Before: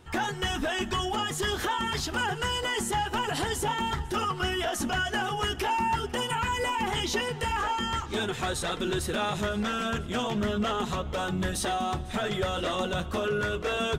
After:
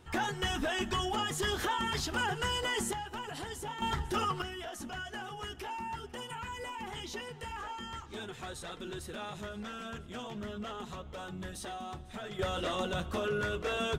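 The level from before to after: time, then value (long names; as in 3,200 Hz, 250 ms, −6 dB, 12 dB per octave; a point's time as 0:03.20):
−3.5 dB
from 0:02.93 −11.5 dB
from 0:03.82 −3 dB
from 0:04.42 −12.5 dB
from 0:12.39 −4.5 dB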